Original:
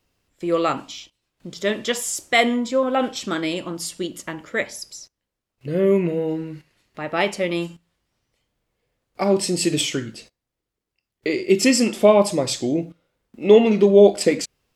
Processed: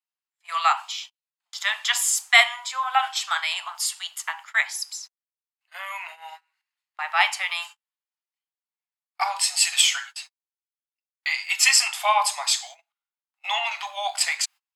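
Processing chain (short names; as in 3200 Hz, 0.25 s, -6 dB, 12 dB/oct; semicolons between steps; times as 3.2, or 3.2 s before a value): steep high-pass 770 Hz 72 dB/oct; notch 5700 Hz, Q 16; gate -44 dBFS, range -27 dB; 9.53–11.88 comb 7.3 ms, depth 58%; gain +4.5 dB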